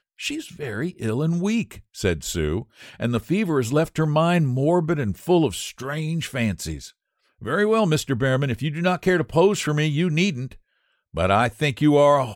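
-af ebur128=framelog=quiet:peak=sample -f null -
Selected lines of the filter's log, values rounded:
Integrated loudness:
  I:         -22.3 LUFS
  Threshold: -32.7 LUFS
Loudness range:
  LRA:         3.3 LU
  Threshold: -42.8 LUFS
  LRA low:   -24.6 LUFS
  LRA high:  -21.2 LUFS
Sample peak:
  Peak:       -7.2 dBFS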